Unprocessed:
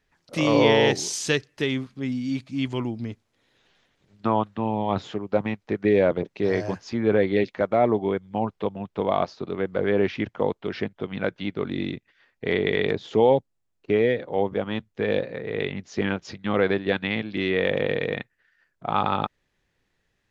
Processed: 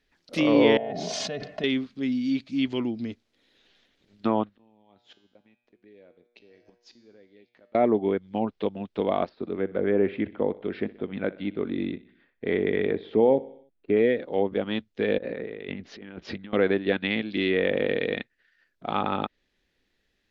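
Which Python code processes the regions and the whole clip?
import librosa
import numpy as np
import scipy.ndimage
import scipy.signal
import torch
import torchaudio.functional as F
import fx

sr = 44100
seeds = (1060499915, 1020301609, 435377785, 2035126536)

y = fx.chain(x, sr, fx.double_bandpass(hz=340.0, octaves=1.8),
    fx.comb(ms=2.8, depth=0.61),
    fx.env_flatten(amount_pct=100), at=(0.77, 1.64))
y = fx.chain(y, sr, fx.gate_flip(shuts_db=-21.0, range_db=-27),
    fx.over_compress(threshold_db=-44.0, ratio=-0.5),
    fx.comb_fb(f0_hz=120.0, decay_s=0.91, harmonics='all', damping=0.0, mix_pct=70), at=(4.49, 7.75))
y = fx.chain(y, sr, fx.air_absorb(metres=430.0),
    fx.notch(hz=2900.0, q=18.0),
    fx.echo_feedback(ms=62, feedback_pct=56, wet_db=-19.0), at=(9.29, 13.97))
y = fx.chain(y, sr, fx.lowpass(hz=2500.0, slope=12),
    fx.over_compress(threshold_db=-37.0, ratio=-1.0), at=(15.18, 16.53))
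y = fx.env_lowpass_down(y, sr, base_hz=2400.0, full_db=-19.0)
y = fx.graphic_eq(y, sr, hz=(125, 250, 1000, 4000, 8000), db=(-10, 4, -6, 5, -5))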